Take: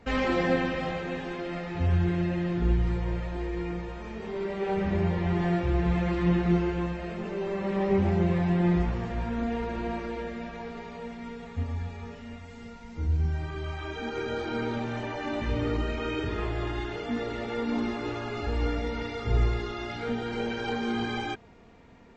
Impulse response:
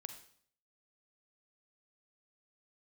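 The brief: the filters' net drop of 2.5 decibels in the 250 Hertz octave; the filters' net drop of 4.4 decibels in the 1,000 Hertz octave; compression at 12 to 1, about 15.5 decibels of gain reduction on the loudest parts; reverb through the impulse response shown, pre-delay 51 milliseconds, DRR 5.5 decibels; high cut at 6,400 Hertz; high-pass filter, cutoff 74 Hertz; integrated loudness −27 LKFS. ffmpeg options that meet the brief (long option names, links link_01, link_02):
-filter_complex "[0:a]highpass=74,lowpass=6400,equalizer=frequency=250:width_type=o:gain=-3.5,equalizer=frequency=1000:width_type=o:gain=-6,acompressor=threshold=-38dB:ratio=12,asplit=2[link_01][link_02];[1:a]atrim=start_sample=2205,adelay=51[link_03];[link_02][link_03]afir=irnorm=-1:irlink=0,volume=-1.5dB[link_04];[link_01][link_04]amix=inputs=2:normalize=0,volume=13.5dB"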